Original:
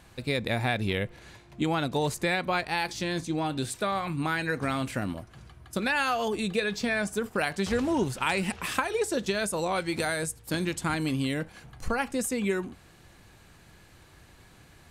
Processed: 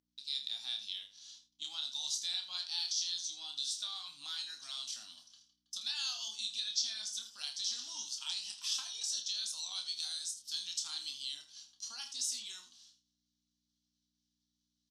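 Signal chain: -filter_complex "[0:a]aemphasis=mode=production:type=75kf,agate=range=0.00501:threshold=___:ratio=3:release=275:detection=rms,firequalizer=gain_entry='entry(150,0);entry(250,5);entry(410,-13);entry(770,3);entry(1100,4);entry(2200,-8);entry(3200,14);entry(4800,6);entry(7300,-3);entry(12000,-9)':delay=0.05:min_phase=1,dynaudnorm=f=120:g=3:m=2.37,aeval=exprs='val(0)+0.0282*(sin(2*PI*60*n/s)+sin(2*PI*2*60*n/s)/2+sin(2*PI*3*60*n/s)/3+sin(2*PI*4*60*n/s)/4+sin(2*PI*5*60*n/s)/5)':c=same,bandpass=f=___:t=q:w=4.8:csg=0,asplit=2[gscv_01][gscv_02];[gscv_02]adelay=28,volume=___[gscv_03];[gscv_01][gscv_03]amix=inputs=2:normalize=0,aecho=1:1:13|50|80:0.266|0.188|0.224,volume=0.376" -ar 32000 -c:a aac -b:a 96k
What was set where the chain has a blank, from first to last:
0.0112, 5.7k, 0.501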